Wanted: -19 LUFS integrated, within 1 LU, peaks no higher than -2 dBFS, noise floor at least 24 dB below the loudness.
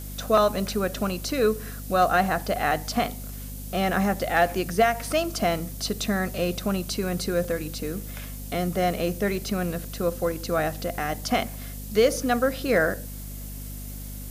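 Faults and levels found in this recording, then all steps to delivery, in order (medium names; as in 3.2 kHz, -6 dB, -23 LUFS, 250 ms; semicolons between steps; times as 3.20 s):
hum 50 Hz; highest harmonic 250 Hz; hum level -34 dBFS; noise floor -36 dBFS; noise floor target -50 dBFS; loudness -25.5 LUFS; peak level -9.5 dBFS; loudness target -19.0 LUFS
-> de-hum 50 Hz, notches 5; noise reduction 14 dB, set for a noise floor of -36 dBFS; trim +6.5 dB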